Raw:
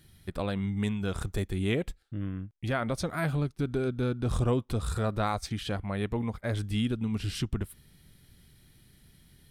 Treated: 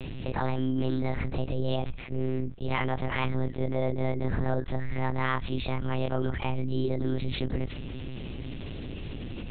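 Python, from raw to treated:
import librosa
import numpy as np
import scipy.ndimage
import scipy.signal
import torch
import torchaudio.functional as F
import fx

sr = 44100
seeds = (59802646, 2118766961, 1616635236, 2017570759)

y = fx.pitch_bins(x, sr, semitones=7.0)
y = fx.lpc_monotone(y, sr, seeds[0], pitch_hz=130.0, order=8)
y = fx.env_flatten(y, sr, amount_pct=70)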